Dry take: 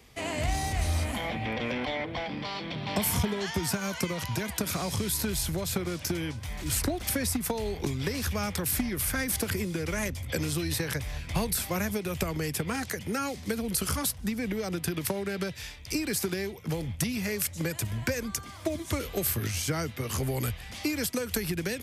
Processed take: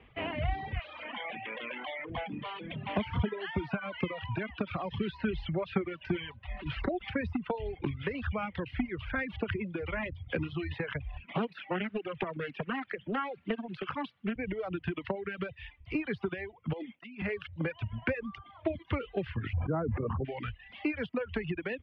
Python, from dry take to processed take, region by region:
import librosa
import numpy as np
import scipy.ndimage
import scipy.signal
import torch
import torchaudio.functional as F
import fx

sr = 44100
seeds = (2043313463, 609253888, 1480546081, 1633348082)

y = fx.chain(x, sr, fx.highpass(hz=820.0, slope=6),
    fx.env_flatten(amount_pct=50), at=(0.79, 2.1))
y = fx.chain(y, sr, fx.lowpass(hz=6400.0, slope=12),
    fx.high_shelf(hz=4500.0, db=5.5),
    fx.comb(ms=5.2, depth=0.48), at=(4.9, 7.1))
y = fx.chain(y, sr, fx.highpass(hz=150.0, slope=24),
    fx.echo_wet_highpass(ms=64, feedback_pct=68, hz=1600.0, wet_db=-11.0),
    fx.doppler_dist(depth_ms=0.57), at=(11.25, 14.36))
y = fx.chain(y, sr, fx.cheby1_highpass(hz=240.0, order=3),
    fx.over_compress(threshold_db=-37.0, ratio=-0.5), at=(16.73, 17.22))
y = fx.chain(y, sr, fx.bessel_lowpass(hz=850.0, order=4),
    fx.env_flatten(amount_pct=100), at=(19.53, 20.25))
y = fx.dereverb_blind(y, sr, rt60_s=0.73)
y = scipy.signal.sosfilt(scipy.signal.ellip(4, 1.0, 60, 3000.0, 'lowpass', fs=sr, output='sos'), y)
y = fx.dereverb_blind(y, sr, rt60_s=2.0)